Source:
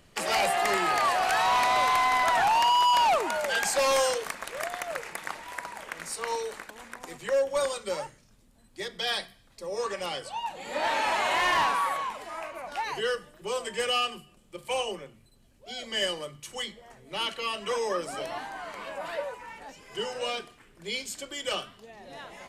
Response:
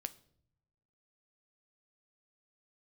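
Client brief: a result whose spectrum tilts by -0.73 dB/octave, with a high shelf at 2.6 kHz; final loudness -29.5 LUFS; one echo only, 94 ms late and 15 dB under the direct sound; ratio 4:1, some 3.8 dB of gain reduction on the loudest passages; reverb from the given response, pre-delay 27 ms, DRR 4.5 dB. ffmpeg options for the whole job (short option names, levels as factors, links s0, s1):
-filter_complex "[0:a]highshelf=f=2600:g=3.5,acompressor=threshold=0.0562:ratio=4,aecho=1:1:94:0.178,asplit=2[s0][s1];[1:a]atrim=start_sample=2205,adelay=27[s2];[s1][s2]afir=irnorm=-1:irlink=0,volume=0.794[s3];[s0][s3]amix=inputs=2:normalize=0,volume=0.891"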